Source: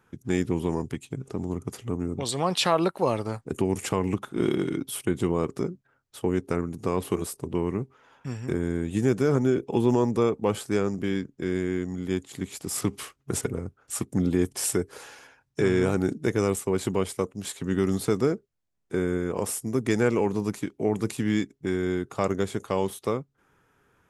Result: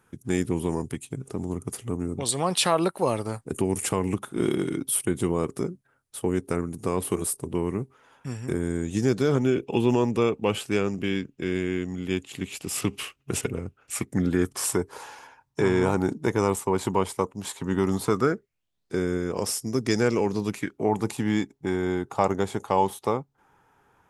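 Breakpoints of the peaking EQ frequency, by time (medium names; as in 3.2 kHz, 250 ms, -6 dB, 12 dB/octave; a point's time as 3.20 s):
peaking EQ +12.5 dB 0.48 oct
8.62 s 9.7 kHz
9.45 s 2.7 kHz
13.81 s 2.7 kHz
14.79 s 930 Hz
18.03 s 930 Hz
18.96 s 5.2 kHz
20.33 s 5.2 kHz
20.89 s 850 Hz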